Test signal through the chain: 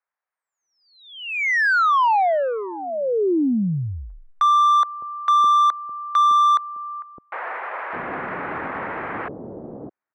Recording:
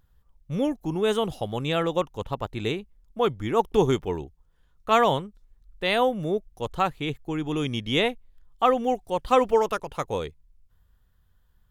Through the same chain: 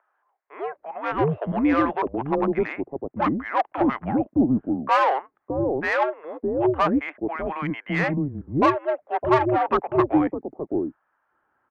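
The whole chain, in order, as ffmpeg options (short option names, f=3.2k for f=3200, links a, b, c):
-filter_complex "[0:a]highpass=f=240:t=q:w=0.5412,highpass=f=240:t=q:w=1.307,lowpass=f=2.2k:t=q:w=0.5176,lowpass=f=2.2k:t=q:w=0.7071,lowpass=f=2.2k:t=q:w=1.932,afreqshift=-140,asplit=2[a][b];[b]highpass=f=720:p=1,volume=21dB,asoftclip=type=tanh:threshold=-7dB[c];[a][c]amix=inputs=2:normalize=0,lowpass=f=1.3k:p=1,volume=-6dB,acrossover=split=530[d][e];[d]adelay=610[f];[f][e]amix=inputs=2:normalize=0"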